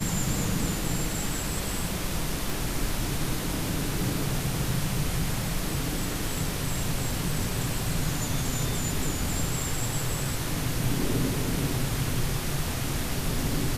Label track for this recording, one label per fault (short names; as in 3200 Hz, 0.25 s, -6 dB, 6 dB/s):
2.500000	2.500000	pop